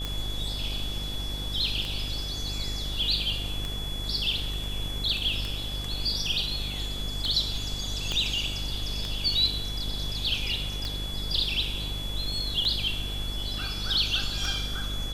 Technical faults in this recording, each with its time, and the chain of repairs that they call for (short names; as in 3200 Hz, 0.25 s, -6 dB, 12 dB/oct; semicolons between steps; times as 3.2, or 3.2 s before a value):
buzz 50 Hz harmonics 17 -35 dBFS
tick 33 1/3 rpm -17 dBFS
tone 3400 Hz -35 dBFS
8.12 pop -17 dBFS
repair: de-click; notch 3400 Hz, Q 30; de-hum 50 Hz, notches 17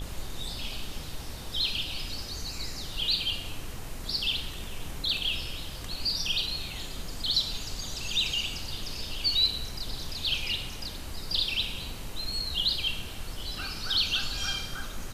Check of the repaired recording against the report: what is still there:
8.12 pop